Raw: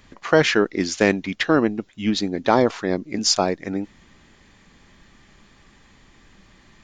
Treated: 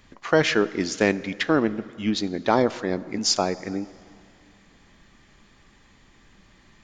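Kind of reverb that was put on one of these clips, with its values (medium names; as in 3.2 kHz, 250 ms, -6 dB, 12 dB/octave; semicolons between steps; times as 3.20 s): plate-style reverb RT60 2.5 s, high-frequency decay 0.7×, pre-delay 0 ms, DRR 16.5 dB; trim -3 dB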